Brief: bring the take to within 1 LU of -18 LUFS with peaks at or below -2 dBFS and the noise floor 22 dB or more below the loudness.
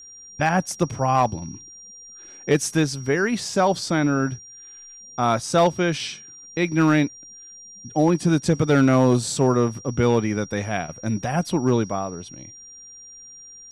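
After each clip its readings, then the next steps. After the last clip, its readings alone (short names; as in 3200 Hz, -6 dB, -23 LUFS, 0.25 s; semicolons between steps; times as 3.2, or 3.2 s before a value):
clipped 0.7%; flat tops at -10.0 dBFS; steady tone 5700 Hz; tone level -41 dBFS; loudness -22.0 LUFS; peak -10.0 dBFS; loudness target -18.0 LUFS
-> clip repair -10 dBFS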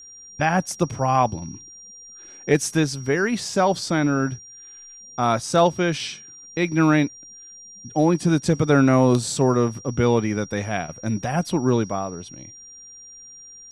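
clipped 0.0%; steady tone 5700 Hz; tone level -41 dBFS
-> notch 5700 Hz, Q 30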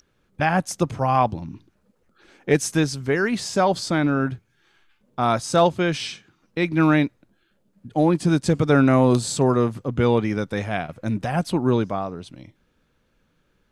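steady tone none; loudness -21.5 LUFS; peak -4.5 dBFS; loudness target -18.0 LUFS
-> gain +3.5 dB; limiter -2 dBFS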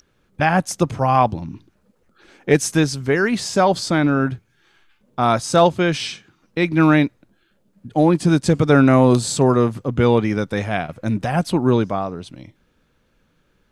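loudness -18.0 LUFS; peak -2.0 dBFS; noise floor -64 dBFS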